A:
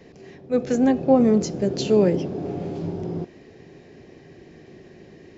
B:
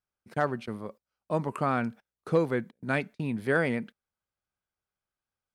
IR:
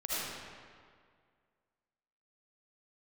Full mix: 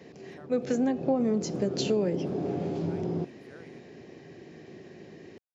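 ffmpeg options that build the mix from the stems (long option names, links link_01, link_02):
-filter_complex "[0:a]volume=-1dB[link_01];[1:a]acompressor=threshold=-38dB:ratio=2.5,volume=-15.5dB[link_02];[link_01][link_02]amix=inputs=2:normalize=0,highpass=110,acompressor=threshold=-24dB:ratio=4"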